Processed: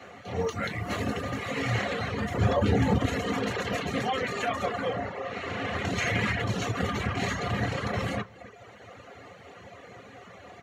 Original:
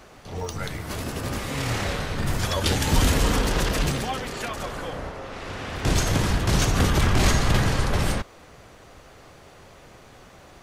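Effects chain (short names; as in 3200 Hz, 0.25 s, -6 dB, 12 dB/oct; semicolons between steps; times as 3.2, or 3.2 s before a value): limiter -20.5 dBFS, peak gain reduction 10.5 dB; 5.98–6.42 bell 2200 Hz +10 dB 0.88 oct; outdoor echo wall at 47 m, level -13 dB; reverb, pre-delay 3 ms, DRR 1.5 dB; reverb removal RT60 0.95 s; HPF 110 Hz 6 dB/oct; 1.13–1.57 compressor, threshold -20 dBFS, peak gain reduction 5 dB; 2.34–3.06 tilt shelf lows +7.5 dB, about 1400 Hz; gain -8.5 dB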